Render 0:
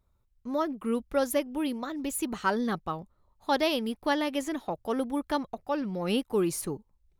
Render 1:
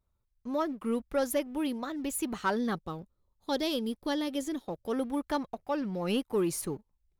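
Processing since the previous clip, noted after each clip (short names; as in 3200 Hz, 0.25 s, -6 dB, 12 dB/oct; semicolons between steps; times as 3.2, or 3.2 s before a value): spectral gain 2.74–4.92, 560–3100 Hz -7 dB; sample leveller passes 1; gain -5 dB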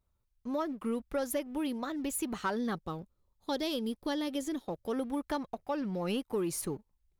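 compressor 3:1, threshold -30 dBFS, peak gain reduction 5 dB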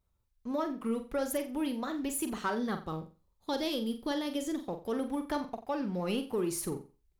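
flutter echo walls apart 7.6 m, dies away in 0.32 s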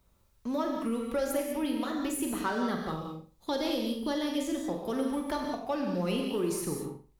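non-linear reverb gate 0.22 s flat, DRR 2 dB; three-band squash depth 40%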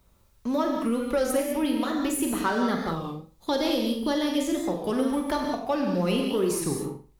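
record warp 33 1/3 rpm, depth 100 cents; gain +5.5 dB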